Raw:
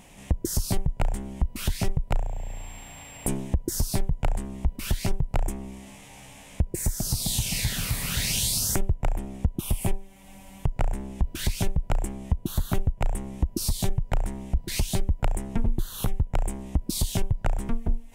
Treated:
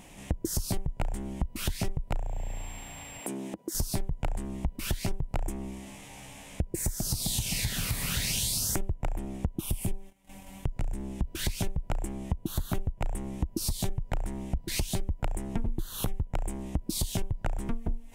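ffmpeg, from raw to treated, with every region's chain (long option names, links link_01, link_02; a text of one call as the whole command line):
ffmpeg -i in.wav -filter_complex "[0:a]asettb=1/sr,asplit=3[link_01][link_02][link_03];[link_01]atrim=end=3.204[link_04];[link_02]atrim=start=3.2:end=3.75,asetpts=PTS-STARTPTS,afade=type=in:duration=0.004:curve=qsin,afade=type=out:start_time=0.546:duration=0.004:curve=qsin,highpass=frequency=190:width=0.5412,highpass=frequency=190:width=1.3066,acompressor=threshold=-33dB:ratio=3:attack=3.2:release=140:knee=1:detection=peak[link_05];[link_03]atrim=start=3.746[link_06];[link_04][link_05]acrossfade=duration=0.004:curve1=hsin:curve2=qsin[link_07];[link_07][link_06]acrossfade=duration=0.004:curve1=qsin:curve2=hsin,asettb=1/sr,asplit=3[link_08][link_09][link_10];[link_08]atrim=end=9.664[link_11];[link_09]atrim=start=9.66:end=11.35,asetpts=PTS-STARTPTS,afade=type=in:duration=0.004:curve=qsin,afade=type=out:start_time=1.686:duration=0.004:curve=qsin,agate=range=-17dB:threshold=-48dB:ratio=16:release=100:detection=peak,acrossover=split=380|3000[link_12][link_13][link_14];[link_13]acompressor=threshold=-48dB:ratio=2:attack=3.2:release=140:knee=2.83:detection=peak[link_15];[link_12][link_15][link_14]amix=inputs=3:normalize=0[link_16];[link_10]atrim=start=11.346[link_17];[link_11][link_16]acrossfade=duration=0.004:curve1=hsin:curve2=qsin[link_18];[link_18][link_17]acrossfade=duration=0.004:curve1=qsin:curve2=hsin,equalizer=frequency=320:width=6.8:gain=5,acompressor=threshold=-27dB:ratio=3" out.wav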